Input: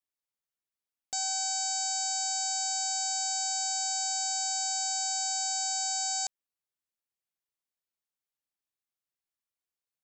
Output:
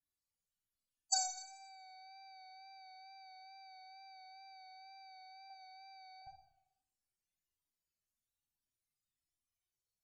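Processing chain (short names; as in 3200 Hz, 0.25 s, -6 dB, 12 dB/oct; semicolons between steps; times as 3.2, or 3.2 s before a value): 5.5–6.22 HPF 120 Hz 24 dB/oct; treble ducked by the level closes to 380 Hz, closed at -28 dBFS; low shelf 170 Hz +9 dB; loudest bins only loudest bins 16; high shelf 2400 Hz +11 dB; Schroeder reverb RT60 0.79 s, combs from 27 ms, DRR 0 dB; wow and flutter 26 cents; gain +1 dB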